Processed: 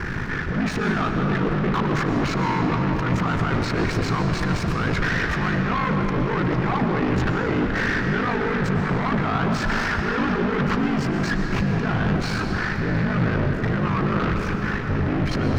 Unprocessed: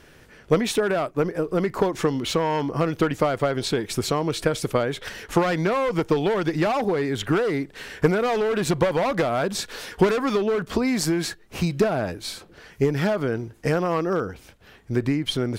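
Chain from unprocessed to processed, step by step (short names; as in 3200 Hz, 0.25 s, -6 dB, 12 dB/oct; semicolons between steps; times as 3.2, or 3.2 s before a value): bell 170 Hz +6 dB 0.22 oct; negative-ratio compressor -31 dBFS, ratio -1; fixed phaser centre 1400 Hz, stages 4; sample leveller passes 5; ring modulator 26 Hz; sample leveller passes 3; air absorption 220 m; reverb RT60 4.6 s, pre-delay 80 ms, DRR 3 dB; gain -3.5 dB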